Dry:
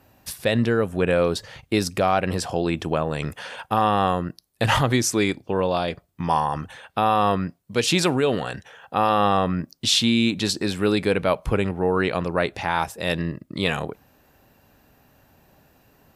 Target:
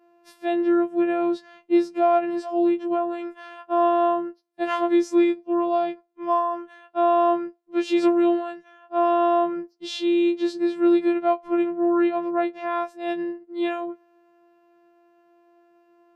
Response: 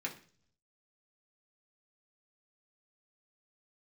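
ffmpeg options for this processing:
-af "afftfilt=real='hypot(re,im)*cos(PI*b)':imag='0':win_size=512:overlap=0.75,bandpass=f=420:t=q:w=0.72:csg=0,afftfilt=real='re*2.83*eq(mod(b,8),0)':imag='im*2.83*eq(mod(b,8),0)':win_size=2048:overlap=0.75"

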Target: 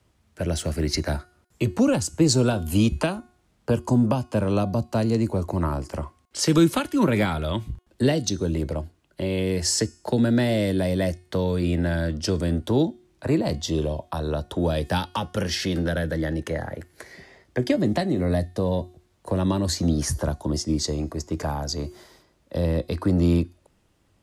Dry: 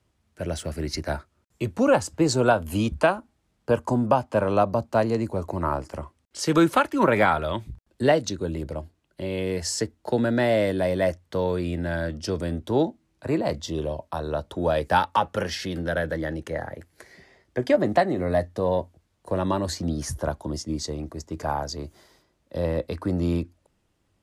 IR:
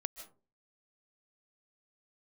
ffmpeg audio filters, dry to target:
-filter_complex "[0:a]acrossover=split=330|3000[a][b][c];[b]acompressor=threshold=-34dB:ratio=5[d];[a][d][c]amix=inputs=3:normalize=0,bandreject=f=361.6:t=h:w=4,bandreject=f=723.2:t=h:w=4,bandreject=f=1.0848k:t=h:w=4,bandreject=f=1.4464k:t=h:w=4,bandreject=f=1.808k:t=h:w=4,bandreject=f=2.1696k:t=h:w=4,bandreject=f=2.5312k:t=h:w=4,bandreject=f=2.8928k:t=h:w=4,bandreject=f=3.2544k:t=h:w=4,bandreject=f=3.616k:t=h:w=4,bandreject=f=3.9776k:t=h:w=4,bandreject=f=4.3392k:t=h:w=4,bandreject=f=4.7008k:t=h:w=4,bandreject=f=5.0624k:t=h:w=4,bandreject=f=5.424k:t=h:w=4,bandreject=f=5.7856k:t=h:w=4,bandreject=f=6.1472k:t=h:w=4,bandreject=f=6.5088k:t=h:w=4,bandreject=f=6.8704k:t=h:w=4,bandreject=f=7.232k:t=h:w=4,bandreject=f=7.5936k:t=h:w=4,bandreject=f=7.9552k:t=h:w=4,bandreject=f=8.3168k:t=h:w=4,bandreject=f=8.6784k:t=h:w=4,bandreject=f=9.04k:t=h:w=4,bandreject=f=9.4016k:t=h:w=4,bandreject=f=9.7632k:t=h:w=4,bandreject=f=10.1248k:t=h:w=4,bandreject=f=10.4864k:t=h:w=4,bandreject=f=10.848k:t=h:w=4,bandreject=f=11.2096k:t=h:w=4,bandreject=f=11.5712k:t=h:w=4,volume=5.5dB"

